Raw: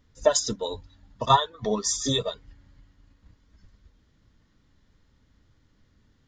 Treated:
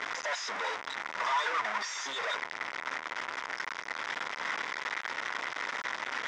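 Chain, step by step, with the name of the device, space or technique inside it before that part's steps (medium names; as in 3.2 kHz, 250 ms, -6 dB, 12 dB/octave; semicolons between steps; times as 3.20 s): 1.57–2.02 s: comb 1.1 ms, depth 81%; home computer beeper (one-bit comparator; cabinet simulation 790–5100 Hz, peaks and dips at 980 Hz +6 dB, 1.4 kHz +5 dB, 2 kHz +8 dB, 2.9 kHz -4 dB, 4.3 kHz -10 dB)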